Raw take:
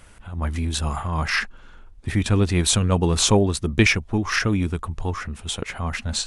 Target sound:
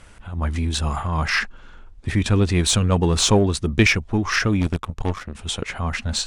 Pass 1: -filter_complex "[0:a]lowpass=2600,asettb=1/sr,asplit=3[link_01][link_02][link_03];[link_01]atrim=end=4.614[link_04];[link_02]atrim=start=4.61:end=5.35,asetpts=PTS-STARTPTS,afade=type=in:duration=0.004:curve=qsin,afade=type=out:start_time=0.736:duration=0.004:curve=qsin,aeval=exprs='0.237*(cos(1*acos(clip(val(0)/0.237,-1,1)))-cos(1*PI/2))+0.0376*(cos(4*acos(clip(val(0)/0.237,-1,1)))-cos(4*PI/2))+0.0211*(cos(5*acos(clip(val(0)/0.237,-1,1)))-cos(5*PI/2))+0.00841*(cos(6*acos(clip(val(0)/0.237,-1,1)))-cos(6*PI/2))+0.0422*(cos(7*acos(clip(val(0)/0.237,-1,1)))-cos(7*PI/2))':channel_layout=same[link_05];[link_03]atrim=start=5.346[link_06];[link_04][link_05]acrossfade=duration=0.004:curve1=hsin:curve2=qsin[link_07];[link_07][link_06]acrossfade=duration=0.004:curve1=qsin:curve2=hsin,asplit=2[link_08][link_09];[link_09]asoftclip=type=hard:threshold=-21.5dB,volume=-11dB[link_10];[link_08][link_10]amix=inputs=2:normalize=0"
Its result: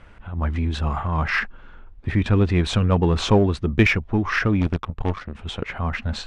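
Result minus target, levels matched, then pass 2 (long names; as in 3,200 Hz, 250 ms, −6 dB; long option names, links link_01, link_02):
8,000 Hz band −15.0 dB
-filter_complex "[0:a]lowpass=8800,asettb=1/sr,asplit=3[link_01][link_02][link_03];[link_01]atrim=end=4.614[link_04];[link_02]atrim=start=4.61:end=5.35,asetpts=PTS-STARTPTS,afade=type=in:duration=0.004:curve=qsin,afade=type=out:start_time=0.736:duration=0.004:curve=qsin,aeval=exprs='0.237*(cos(1*acos(clip(val(0)/0.237,-1,1)))-cos(1*PI/2))+0.0376*(cos(4*acos(clip(val(0)/0.237,-1,1)))-cos(4*PI/2))+0.0211*(cos(5*acos(clip(val(0)/0.237,-1,1)))-cos(5*PI/2))+0.00841*(cos(6*acos(clip(val(0)/0.237,-1,1)))-cos(6*PI/2))+0.0422*(cos(7*acos(clip(val(0)/0.237,-1,1)))-cos(7*PI/2))':channel_layout=same[link_05];[link_03]atrim=start=5.346[link_06];[link_04][link_05]acrossfade=duration=0.004:curve1=hsin:curve2=qsin[link_07];[link_07][link_06]acrossfade=duration=0.004:curve1=qsin:curve2=hsin,asplit=2[link_08][link_09];[link_09]asoftclip=type=hard:threshold=-21.5dB,volume=-11dB[link_10];[link_08][link_10]amix=inputs=2:normalize=0"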